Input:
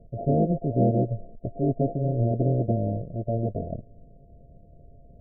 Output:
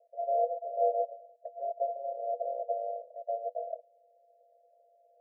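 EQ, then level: dynamic EQ 760 Hz, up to +6 dB, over -46 dBFS, Q 4.4; rippled Chebyshev high-pass 470 Hz, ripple 9 dB; 0.0 dB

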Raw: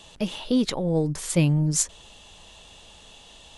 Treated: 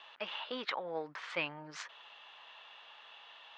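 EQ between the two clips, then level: ladder band-pass 1700 Hz, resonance 25%; air absorption 220 m; +14.0 dB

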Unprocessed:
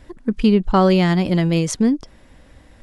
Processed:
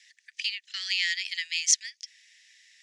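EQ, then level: Chebyshev high-pass 1800 Hz, order 6; synth low-pass 6200 Hz, resonance Q 2.6; 0.0 dB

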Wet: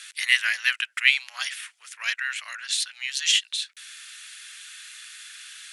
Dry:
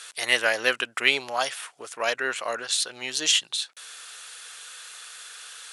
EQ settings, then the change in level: ladder high-pass 1600 Hz, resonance 40%; +6.5 dB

